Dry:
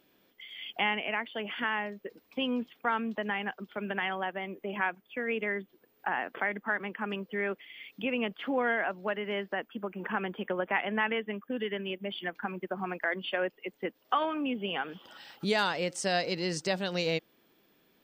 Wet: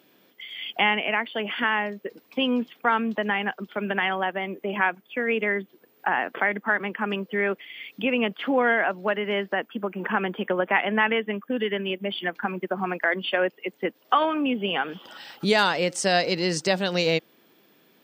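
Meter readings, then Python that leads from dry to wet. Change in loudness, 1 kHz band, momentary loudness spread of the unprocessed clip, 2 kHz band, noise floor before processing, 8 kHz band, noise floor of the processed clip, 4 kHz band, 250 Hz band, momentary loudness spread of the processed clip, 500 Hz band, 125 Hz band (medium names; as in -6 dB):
+7.5 dB, +7.5 dB, 9 LU, +7.5 dB, -69 dBFS, no reading, -61 dBFS, +7.5 dB, +7.0 dB, 9 LU, +7.5 dB, +7.0 dB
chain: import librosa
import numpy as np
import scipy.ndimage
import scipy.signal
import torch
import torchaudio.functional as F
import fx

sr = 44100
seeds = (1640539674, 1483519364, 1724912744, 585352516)

y = scipy.signal.sosfilt(scipy.signal.butter(2, 120.0, 'highpass', fs=sr, output='sos'), x)
y = y * 10.0 ** (7.5 / 20.0)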